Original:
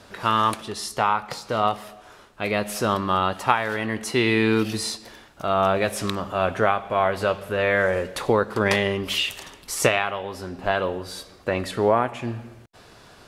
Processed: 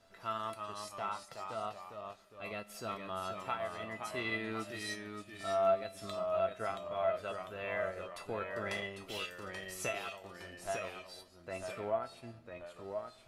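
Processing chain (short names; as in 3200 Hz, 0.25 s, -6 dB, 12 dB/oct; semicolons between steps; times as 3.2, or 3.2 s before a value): resonator 670 Hz, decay 0.28 s, mix 90%; transient shaper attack -2 dB, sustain -6 dB; echoes that change speed 0.314 s, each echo -1 st, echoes 2, each echo -6 dB; gain -1.5 dB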